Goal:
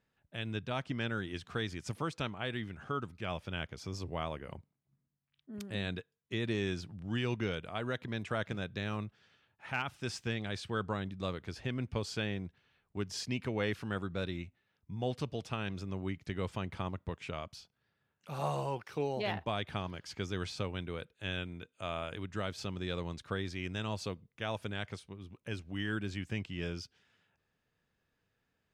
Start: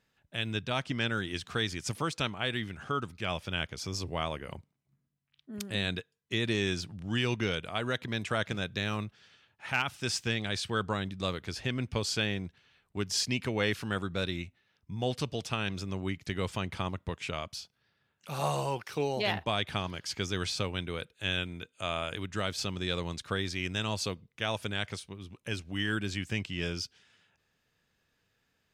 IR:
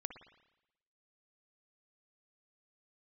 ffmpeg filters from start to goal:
-af "highshelf=f=2.5k:g=-9,volume=-3dB"

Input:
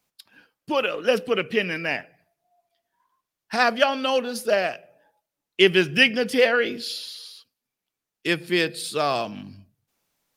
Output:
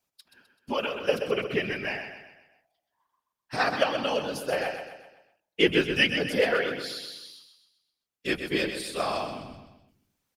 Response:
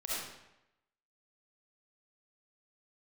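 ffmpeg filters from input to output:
-af "afftfilt=real='hypot(re,im)*cos(2*PI*random(0))':imag='hypot(re,im)*sin(2*PI*random(1))':win_size=512:overlap=0.75,aecho=1:1:128|256|384|512|640:0.398|0.183|0.0842|0.0388|0.0178"

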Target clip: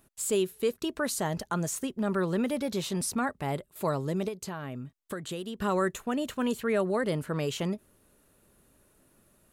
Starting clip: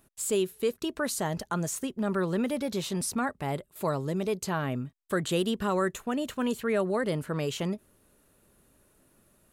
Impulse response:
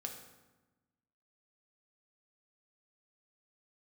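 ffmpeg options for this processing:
-filter_complex "[0:a]asettb=1/sr,asplit=3[a][b][c];[a]atrim=end=4.284[d];[b]atrim=start=4.28:end=5.6,asetpts=PTS-STARTPTS,afade=t=in:d=0.004:c=qsin,afade=t=out:st=1.316:d=0.004:c=qsin,acompressor=threshold=-34dB:ratio=6[e];[c]atrim=start=5.596[f];[d][e]acrossfade=d=0.004:c1=hsin:c2=qsin[g];[g][f]acrossfade=d=0.004:c1=qsin:c2=hsin"

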